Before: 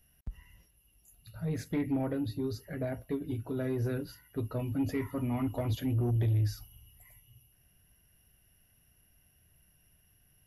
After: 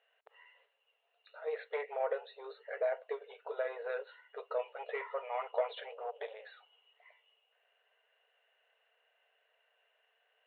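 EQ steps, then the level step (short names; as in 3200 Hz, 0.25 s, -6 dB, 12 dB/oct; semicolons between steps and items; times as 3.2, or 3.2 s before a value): brick-wall FIR band-pass 420–4300 Hz; air absorption 320 m; +6.0 dB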